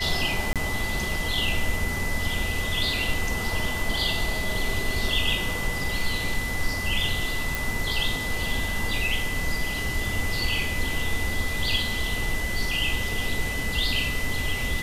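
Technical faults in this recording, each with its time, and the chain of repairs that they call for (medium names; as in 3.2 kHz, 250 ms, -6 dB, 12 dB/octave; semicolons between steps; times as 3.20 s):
whine 2 kHz -30 dBFS
0.53–0.56 s: dropout 27 ms
7.55 s: pop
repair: de-click; band-stop 2 kHz, Q 30; interpolate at 0.53 s, 27 ms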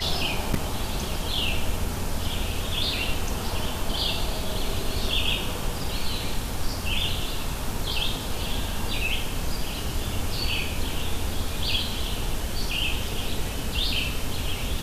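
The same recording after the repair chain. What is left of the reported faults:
nothing left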